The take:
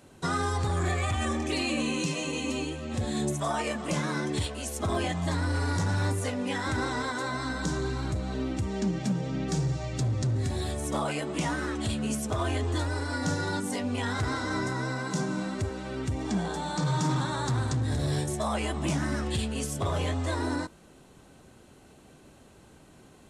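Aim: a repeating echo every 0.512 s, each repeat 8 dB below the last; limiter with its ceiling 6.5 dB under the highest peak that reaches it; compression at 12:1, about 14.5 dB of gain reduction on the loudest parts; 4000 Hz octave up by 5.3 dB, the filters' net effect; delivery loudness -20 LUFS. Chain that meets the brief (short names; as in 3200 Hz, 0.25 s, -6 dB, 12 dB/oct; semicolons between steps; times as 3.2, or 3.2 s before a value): bell 4000 Hz +6.5 dB; compressor 12:1, threshold -39 dBFS; limiter -34 dBFS; feedback echo 0.512 s, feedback 40%, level -8 dB; gain +22.5 dB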